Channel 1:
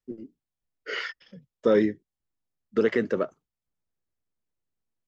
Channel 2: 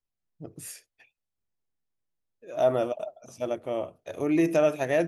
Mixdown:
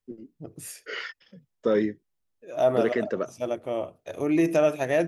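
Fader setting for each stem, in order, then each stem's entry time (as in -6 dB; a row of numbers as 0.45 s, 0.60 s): -2.5 dB, +1.0 dB; 0.00 s, 0.00 s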